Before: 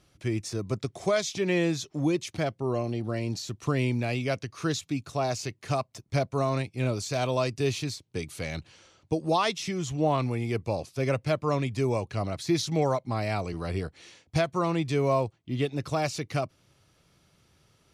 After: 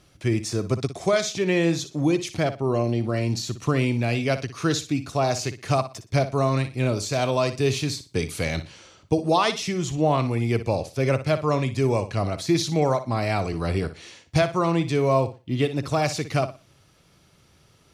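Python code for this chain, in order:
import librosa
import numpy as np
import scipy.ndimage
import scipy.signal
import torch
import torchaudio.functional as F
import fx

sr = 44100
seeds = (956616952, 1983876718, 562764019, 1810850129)

p1 = fx.rider(x, sr, range_db=10, speed_s=0.5)
p2 = x + F.gain(torch.from_numpy(p1), -3.0).numpy()
y = fx.room_flutter(p2, sr, wall_m=10.2, rt60_s=0.29)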